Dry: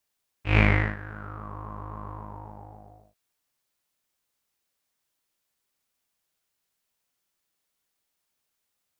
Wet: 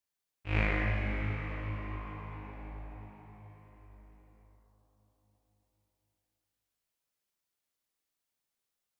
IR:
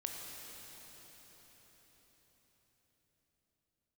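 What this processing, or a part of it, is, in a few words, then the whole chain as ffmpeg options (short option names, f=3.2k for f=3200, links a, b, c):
cathedral: -filter_complex "[1:a]atrim=start_sample=2205[a];[0:a][a]afir=irnorm=-1:irlink=0,volume=-7.5dB"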